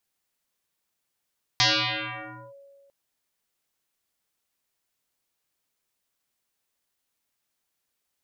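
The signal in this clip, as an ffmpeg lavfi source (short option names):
-f lavfi -i "aevalsrc='0.158*pow(10,-3*t/1.92)*sin(2*PI*557*t+12*clip(1-t/0.93,0,1)*sin(2*PI*0.78*557*t))':d=1.3:s=44100"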